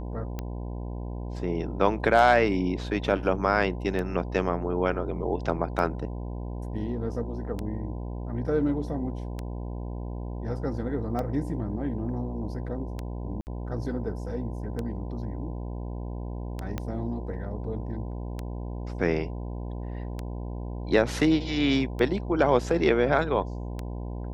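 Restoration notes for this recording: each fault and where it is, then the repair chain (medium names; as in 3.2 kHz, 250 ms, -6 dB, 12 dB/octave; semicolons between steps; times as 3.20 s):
buzz 60 Hz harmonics 17 -34 dBFS
tick 33 1/3 rpm -19 dBFS
13.41–13.47 s: dropout 59 ms
16.78 s: pop -17 dBFS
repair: de-click; de-hum 60 Hz, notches 17; interpolate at 13.41 s, 59 ms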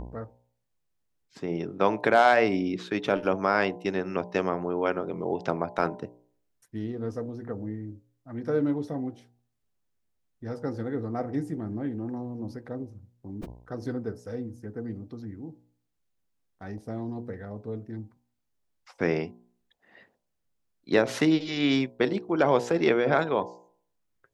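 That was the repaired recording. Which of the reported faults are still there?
16.78 s: pop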